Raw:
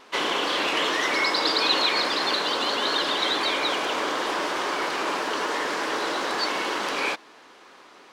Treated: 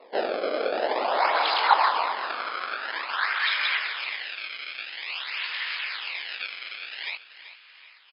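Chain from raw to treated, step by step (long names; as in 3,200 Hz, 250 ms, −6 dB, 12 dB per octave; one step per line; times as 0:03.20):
0:01.57–0:02.23: parametric band 2,600 Hz −14.5 dB 0.31 octaves
in parallel at −2 dB: output level in coarse steps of 21 dB
on the sum: multi-voice chorus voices 4, 1 Hz, delay 19 ms, depth 4.3 ms
pitch vibrato 9.1 Hz 8.4 cents
sample-and-hold swept by an LFO 27×, swing 160% 0.49 Hz
linear-phase brick-wall band-pass 180–5,200 Hz
on a send: repeating echo 384 ms, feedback 33%, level −13 dB
on the sum: high-pass filter sweep 550 Hz → 2,400 Hz, 0:00.54–0:04.42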